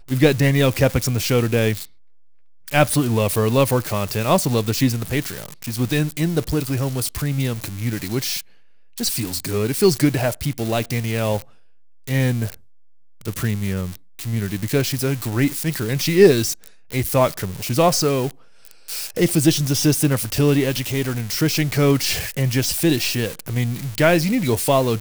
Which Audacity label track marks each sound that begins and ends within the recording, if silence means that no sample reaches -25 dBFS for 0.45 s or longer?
2.680000	8.410000	sound
8.980000	11.420000	sound
12.070000	12.540000	sound